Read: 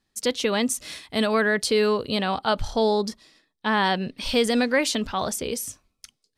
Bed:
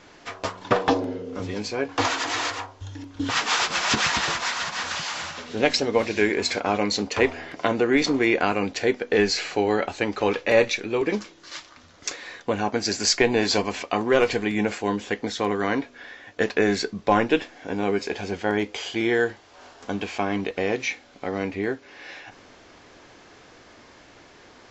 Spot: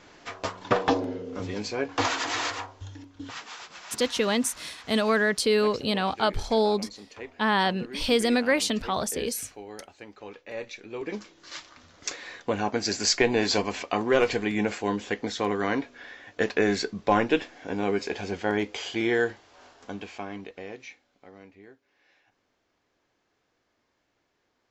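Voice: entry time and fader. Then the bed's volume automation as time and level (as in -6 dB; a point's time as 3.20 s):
3.75 s, -1.5 dB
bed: 2.81 s -2.5 dB
3.56 s -20 dB
10.45 s -20 dB
11.52 s -2.5 dB
19.30 s -2.5 dB
21.70 s -24.5 dB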